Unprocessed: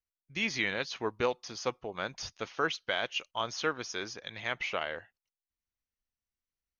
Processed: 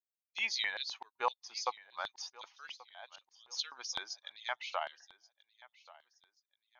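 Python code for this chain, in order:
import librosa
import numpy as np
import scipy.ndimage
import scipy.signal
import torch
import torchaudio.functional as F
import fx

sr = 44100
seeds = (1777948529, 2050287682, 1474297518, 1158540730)

p1 = fx.bin_expand(x, sr, power=1.5)
p2 = fx.auto_swell(p1, sr, attack_ms=639.0, at=(2.7, 3.5), fade=0.02)
p3 = fx.filter_lfo_highpass(p2, sr, shape='square', hz=3.9, low_hz=870.0, high_hz=3900.0, q=3.2)
p4 = p3 + fx.echo_feedback(p3, sr, ms=1132, feedback_pct=32, wet_db=-21, dry=0)
y = p4 * librosa.db_to_amplitude(-1.5)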